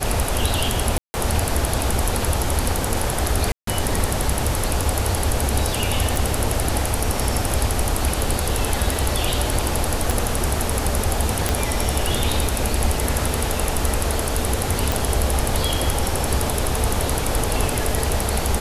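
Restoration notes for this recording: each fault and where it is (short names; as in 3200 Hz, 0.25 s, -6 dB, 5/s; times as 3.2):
0.98–1.14 gap 0.16 s
3.52–3.67 gap 0.153 s
6.16 pop
10.11 pop
11.49 pop
14.92 pop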